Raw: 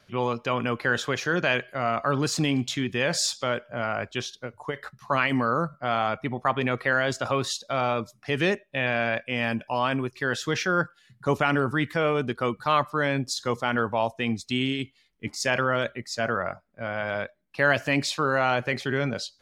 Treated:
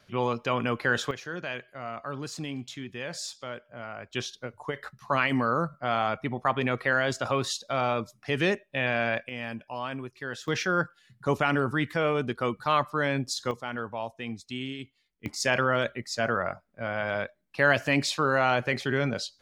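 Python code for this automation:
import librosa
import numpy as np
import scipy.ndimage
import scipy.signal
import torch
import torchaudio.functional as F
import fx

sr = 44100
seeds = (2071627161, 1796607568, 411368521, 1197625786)

y = fx.gain(x, sr, db=fx.steps((0.0, -1.0), (1.11, -11.0), (4.13, -1.5), (9.29, -9.0), (10.48, -2.0), (13.51, -9.0), (15.26, -0.5)))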